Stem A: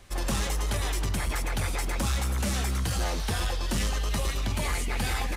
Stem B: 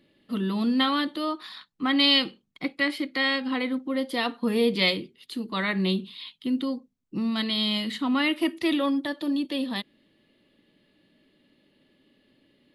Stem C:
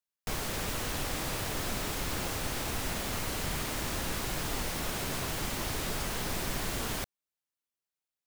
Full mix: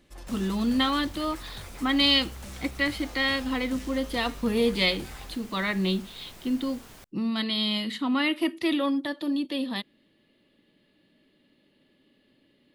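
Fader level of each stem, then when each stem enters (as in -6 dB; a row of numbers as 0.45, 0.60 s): -14.0, -1.0, -14.5 dB; 0.00, 0.00, 0.00 s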